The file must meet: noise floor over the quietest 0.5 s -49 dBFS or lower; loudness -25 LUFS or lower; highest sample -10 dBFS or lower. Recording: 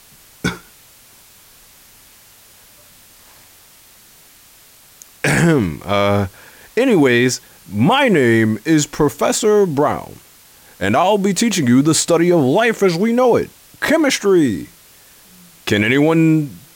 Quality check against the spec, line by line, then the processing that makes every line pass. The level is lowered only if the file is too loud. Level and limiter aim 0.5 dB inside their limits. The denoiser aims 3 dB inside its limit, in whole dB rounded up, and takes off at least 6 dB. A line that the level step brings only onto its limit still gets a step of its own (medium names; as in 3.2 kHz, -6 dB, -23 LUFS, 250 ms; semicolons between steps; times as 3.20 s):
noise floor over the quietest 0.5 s -46 dBFS: fail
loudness -15.5 LUFS: fail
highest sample -4.5 dBFS: fail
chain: trim -10 dB